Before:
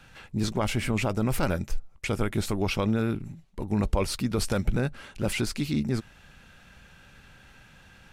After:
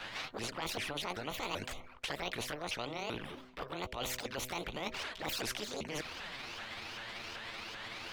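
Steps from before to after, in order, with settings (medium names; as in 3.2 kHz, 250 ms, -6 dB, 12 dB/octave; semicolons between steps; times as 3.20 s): sawtooth pitch modulation +11.5 st, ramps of 387 ms; touch-sensitive flanger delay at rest 10.5 ms, full sweep at -23.5 dBFS; three-band isolator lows -17 dB, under 480 Hz, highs -21 dB, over 3.7 kHz; reverse; compression, threshold -45 dBFS, peak gain reduction 16 dB; reverse; de-hum 126.6 Hz, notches 5; spectrum-flattening compressor 2:1; trim +10 dB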